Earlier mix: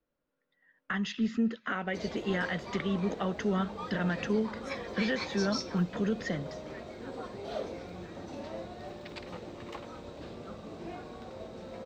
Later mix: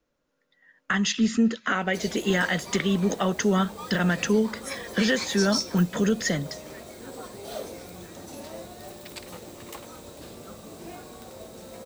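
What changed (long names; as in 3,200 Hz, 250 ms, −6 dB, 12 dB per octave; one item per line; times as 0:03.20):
speech +7.0 dB
master: remove high-frequency loss of the air 190 metres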